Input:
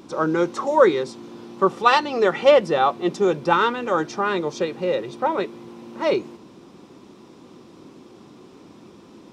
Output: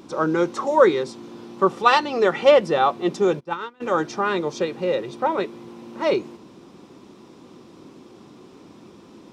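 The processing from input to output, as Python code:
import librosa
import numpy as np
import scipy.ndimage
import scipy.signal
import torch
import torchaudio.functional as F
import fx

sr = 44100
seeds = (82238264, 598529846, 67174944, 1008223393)

y = fx.upward_expand(x, sr, threshold_db=-28.0, expansion=2.5, at=(3.39, 3.8), fade=0.02)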